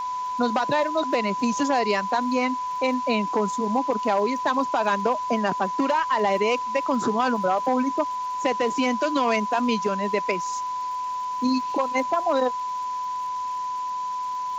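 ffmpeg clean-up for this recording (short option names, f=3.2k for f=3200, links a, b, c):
-af "adeclick=t=4,bandreject=f=1k:w=30,afwtdn=0.0056"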